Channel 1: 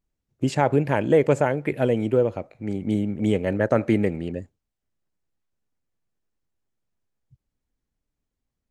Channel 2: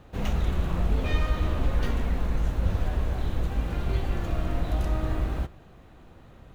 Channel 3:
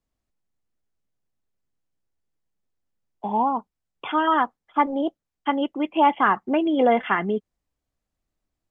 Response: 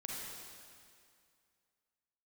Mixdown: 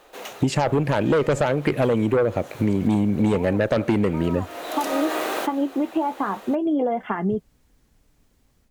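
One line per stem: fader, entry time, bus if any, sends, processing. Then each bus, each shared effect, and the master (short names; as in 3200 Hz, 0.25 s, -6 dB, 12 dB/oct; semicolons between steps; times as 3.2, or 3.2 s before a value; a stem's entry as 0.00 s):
+2.5 dB, 0.00 s, no send, dry
-4.5 dB, 0.00 s, no send, HPF 380 Hz 24 dB/oct; high shelf 5100 Hz +10 dB; auto duck -9 dB, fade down 0.35 s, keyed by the first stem
-5.5 dB, 0.00 s, no send, flange 0.42 Hz, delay 4.3 ms, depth 8.4 ms, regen +55%; compressor, threshold -29 dBFS, peak gain reduction 12 dB; bell 2900 Hz -14.5 dB 2.3 oct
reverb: off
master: AGC gain up to 9.5 dB; added harmonics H 5 -9 dB, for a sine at -0.5 dBFS; compressor 6:1, threshold -18 dBFS, peak gain reduction 12 dB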